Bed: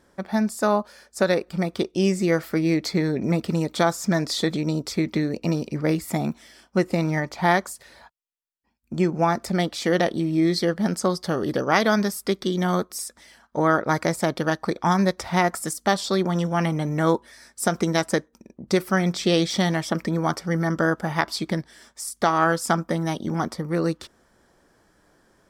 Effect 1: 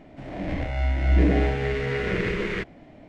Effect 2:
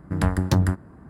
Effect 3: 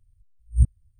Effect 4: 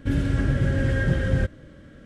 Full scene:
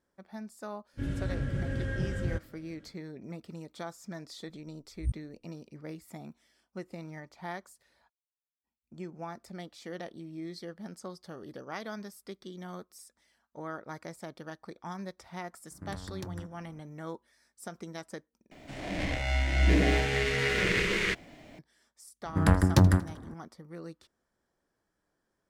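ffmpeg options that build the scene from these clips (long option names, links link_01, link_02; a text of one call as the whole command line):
ffmpeg -i bed.wav -i cue0.wav -i cue1.wav -i cue2.wav -i cue3.wav -filter_complex "[2:a]asplit=2[link_01][link_02];[0:a]volume=-20dB[link_03];[link_01]acompressor=threshold=-24dB:ratio=6:attack=3.2:release=140:knee=1:detection=peak[link_04];[1:a]crystalizer=i=7:c=0[link_05];[link_02]aecho=1:1:79|158|237|316|395:0.112|0.0673|0.0404|0.0242|0.0145[link_06];[link_03]asplit=2[link_07][link_08];[link_07]atrim=end=18.514[link_09];[link_05]atrim=end=3.08,asetpts=PTS-STARTPTS,volume=-5dB[link_10];[link_08]atrim=start=21.586[link_11];[4:a]atrim=end=2.05,asetpts=PTS-STARTPTS,volume=-10.5dB,afade=type=in:duration=0.1,afade=type=out:start_time=1.95:duration=0.1,adelay=920[link_12];[3:a]atrim=end=0.99,asetpts=PTS-STARTPTS,volume=-13.5dB,afade=type=in:duration=0.004:curve=hsin,afade=type=out:start_time=0.986:duration=0.004:curve=hsin,adelay=4470[link_13];[link_04]atrim=end=1.09,asetpts=PTS-STARTPTS,volume=-13dB,afade=type=in:duration=0.004:curve=hsin,afade=type=out:start_time=1.086:duration=0.004:curve=hsin,adelay=15710[link_14];[link_06]atrim=end=1.09,asetpts=PTS-STARTPTS,volume=-0.5dB,afade=type=in:duration=0.004:curve=hsin,afade=type=out:start_time=1.086:duration=0.004:curve=hsin,adelay=22250[link_15];[link_09][link_10]acrossfade=duration=0.004:curve1=hsin:curve2=hsin[link_16];[link_16][link_11]acrossfade=duration=0.004:curve1=hsin:curve2=hsin[link_17];[link_17][link_12][link_13][link_14][link_15]amix=inputs=5:normalize=0" out.wav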